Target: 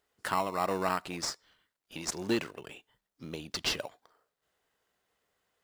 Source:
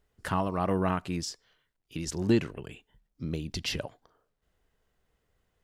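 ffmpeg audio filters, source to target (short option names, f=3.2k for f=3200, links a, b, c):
-filter_complex "[0:a]highpass=f=990:p=1,asplit=2[a][b];[b]acrusher=samples=14:mix=1:aa=0.000001,volume=-8dB[c];[a][c]amix=inputs=2:normalize=0,volume=2dB"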